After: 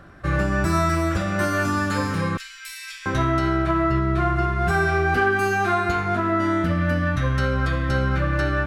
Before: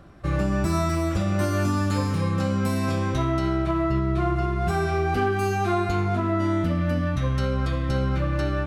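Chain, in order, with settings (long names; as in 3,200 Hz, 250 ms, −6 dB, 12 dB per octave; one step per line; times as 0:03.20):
parametric band 1,600 Hz +9 dB 0.63 octaves
mains-hum notches 50/100/150/200/250/300/350 Hz
0:02.37–0:03.06: inverse Chebyshev band-stop filter 110–590 Hz, stop band 70 dB
level +2 dB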